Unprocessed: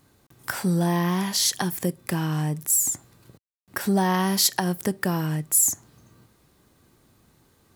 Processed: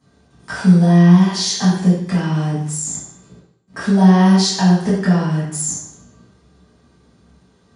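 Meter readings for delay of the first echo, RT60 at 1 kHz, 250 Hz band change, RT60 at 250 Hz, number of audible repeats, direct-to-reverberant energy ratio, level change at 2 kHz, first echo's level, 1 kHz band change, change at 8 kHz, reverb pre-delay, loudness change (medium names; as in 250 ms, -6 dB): no echo, 0.70 s, +13.0 dB, 0.80 s, no echo, -12.0 dB, +4.5 dB, no echo, +5.0 dB, -1.0 dB, 3 ms, +8.5 dB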